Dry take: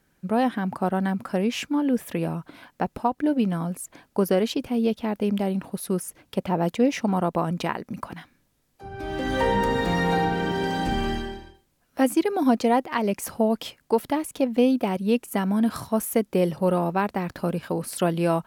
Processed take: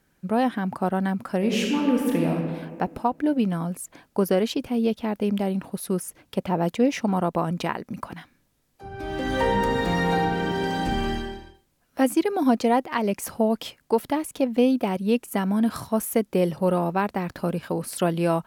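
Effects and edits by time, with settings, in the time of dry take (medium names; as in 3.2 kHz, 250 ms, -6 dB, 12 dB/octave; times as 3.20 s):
1.38–2.31 s: reverb throw, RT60 1.8 s, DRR -1 dB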